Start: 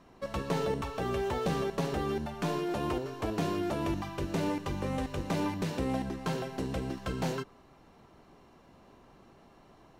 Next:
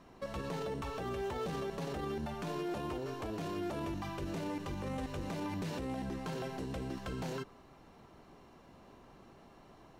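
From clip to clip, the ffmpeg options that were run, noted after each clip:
-af "alimiter=level_in=7dB:limit=-24dB:level=0:latency=1:release=34,volume=-7dB"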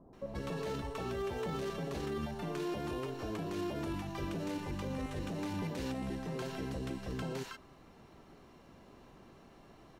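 -filter_complex "[0:a]acrossover=split=870[a][b];[b]adelay=130[c];[a][c]amix=inputs=2:normalize=0,volume=1dB"

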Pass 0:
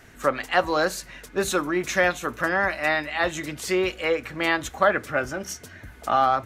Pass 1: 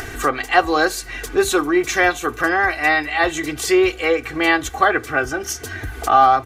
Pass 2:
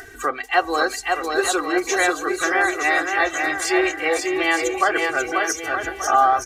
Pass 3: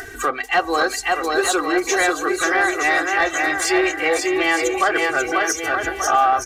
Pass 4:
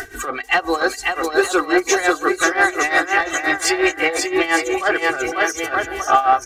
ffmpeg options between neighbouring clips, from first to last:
-af "aecho=1:1:2.6:0.8,acompressor=mode=upward:threshold=-23dB:ratio=2.5,volume=4dB"
-af "afftdn=nr=12:nf=-26,bass=f=250:g=-12,treble=f=4k:g=6,aecho=1:1:540|918|1183|1368|1497:0.631|0.398|0.251|0.158|0.1,volume=-3.5dB"
-filter_complex "[0:a]asplit=2[a][b];[b]acompressor=threshold=-27dB:ratio=6,volume=0dB[c];[a][c]amix=inputs=2:normalize=0,asoftclip=type=tanh:threshold=-8dB"
-af "tremolo=f=5.7:d=0.8,volume=4.5dB"

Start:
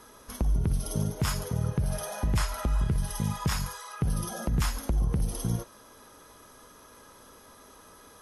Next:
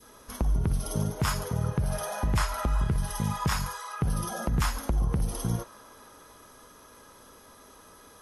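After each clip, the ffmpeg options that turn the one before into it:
-af "adynamicequalizer=threshold=0.00282:dfrequency=1100:dqfactor=0.8:tfrequency=1100:tqfactor=0.8:attack=5:release=100:ratio=0.375:range=2.5:mode=boostabove:tftype=bell"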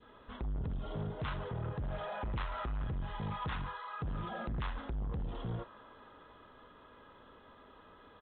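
-af "bandreject=f=2.3k:w=9.9,aresample=8000,asoftclip=type=tanh:threshold=-29.5dB,aresample=44100,volume=-4dB"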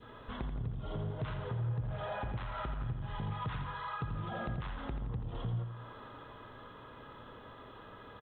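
-filter_complex "[0:a]equalizer=f=120:t=o:w=0.35:g=11.5,acompressor=threshold=-43dB:ratio=4,asplit=2[a][b];[b]aecho=0:1:85|170|255|340|425|510:0.376|0.199|0.106|0.056|0.0297|0.0157[c];[a][c]amix=inputs=2:normalize=0,volume=5.5dB"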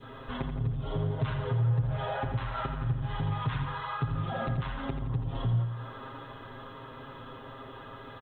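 -af "aecho=1:1:7.5:0.86,volume=4dB"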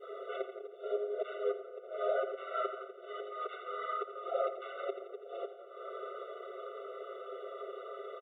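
-af "tiltshelf=f=970:g=6.5,acompressor=threshold=-24dB:ratio=6,afftfilt=real='re*eq(mod(floor(b*sr/1024/380),2),1)':imag='im*eq(mod(floor(b*sr/1024/380),2),1)':win_size=1024:overlap=0.75,volume=2.5dB"

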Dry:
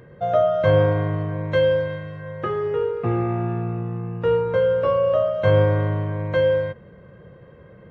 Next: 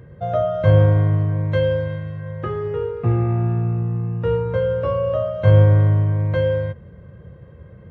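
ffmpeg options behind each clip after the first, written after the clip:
-af "equalizer=f=74:w=0.66:g=14.5,volume=-3dB"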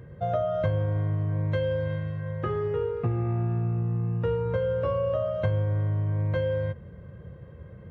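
-af "acompressor=threshold=-20dB:ratio=12,volume=-2.5dB"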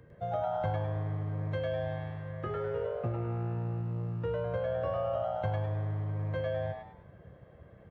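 -filter_complex "[0:a]acrossover=split=270[a][b];[a]aeval=exprs='sgn(val(0))*max(abs(val(0))-0.00282,0)':c=same[c];[b]asplit=5[d][e][f][g][h];[e]adelay=102,afreqshift=120,volume=-3dB[i];[f]adelay=204,afreqshift=240,volume=-12.9dB[j];[g]adelay=306,afreqshift=360,volume=-22.8dB[k];[h]adelay=408,afreqshift=480,volume=-32.7dB[l];[d][i][j][k][l]amix=inputs=5:normalize=0[m];[c][m]amix=inputs=2:normalize=0,volume=-7dB"

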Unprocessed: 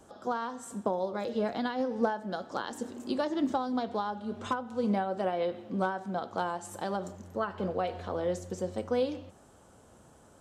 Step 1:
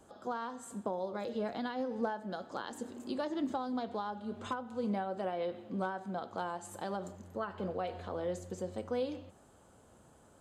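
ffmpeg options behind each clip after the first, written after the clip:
-filter_complex "[0:a]asplit=2[a][b];[b]alimiter=level_in=2.5dB:limit=-24dB:level=0:latency=1:release=88,volume=-2.5dB,volume=-3dB[c];[a][c]amix=inputs=2:normalize=0,bandreject=f=5.6k:w=8.4,volume=-8.5dB"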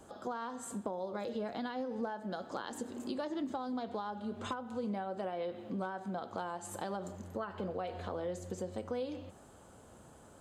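-af "acompressor=threshold=-42dB:ratio=2.5,volume=4.5dB"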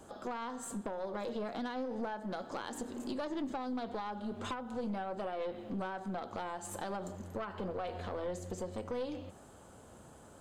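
-af "aeval=exprs='(tanh(44.7*val(0)+0.35)-tanh(0.35))/44.7':c=same,volume=2.5dB"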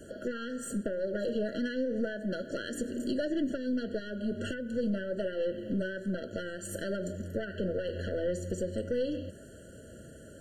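-af "afftfilt=real='re*eq(mod(floor(b*sr/1024/670),2),0)':imag='im*eq(mod(floor(b*sr/1024/670),2),0)':win_size=1024:overlap=0.75,volume=7dB"

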